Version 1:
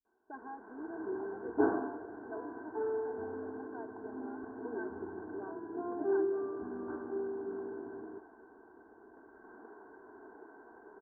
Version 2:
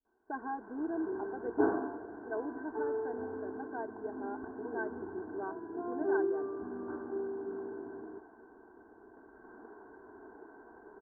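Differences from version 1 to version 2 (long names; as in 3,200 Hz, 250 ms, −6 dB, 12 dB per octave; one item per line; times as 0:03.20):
speech +8.0 dB
first sound: add low-shelf EQ 140 Hz +9 dB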